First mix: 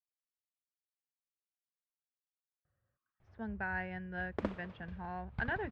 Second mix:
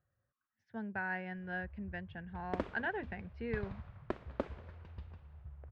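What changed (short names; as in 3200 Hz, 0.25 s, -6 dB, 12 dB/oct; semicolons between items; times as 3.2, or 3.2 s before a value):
speech: entry -2.65 s; background: entry -1.85 s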